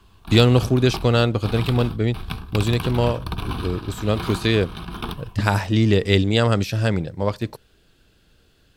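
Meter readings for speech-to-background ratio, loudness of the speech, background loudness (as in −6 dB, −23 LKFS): 11.0 dB, −21.0 LKFS, −32.0 LKFS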